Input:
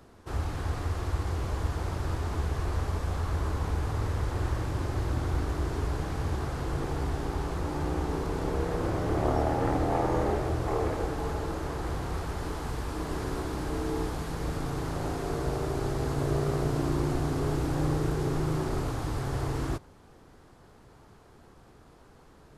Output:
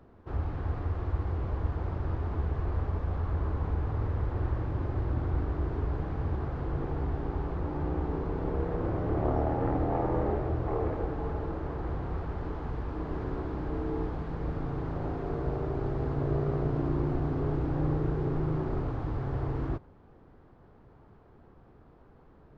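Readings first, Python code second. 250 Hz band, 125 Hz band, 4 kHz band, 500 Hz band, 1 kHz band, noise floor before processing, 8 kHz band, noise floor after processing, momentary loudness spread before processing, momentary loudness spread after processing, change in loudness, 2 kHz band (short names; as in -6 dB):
-1.0 dB, -0.5 dB, under -10 dB, -2.0 dB, -3.5 dB, -55 dBFS, under -25 dB, -56 dBFS, 6 LU, 6 LU, -1.0 dB, -7.0 dB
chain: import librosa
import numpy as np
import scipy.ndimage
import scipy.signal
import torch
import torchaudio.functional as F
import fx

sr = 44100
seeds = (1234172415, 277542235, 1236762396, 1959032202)

y = fx.spacing_loss(x, sr, db_at_10k=40)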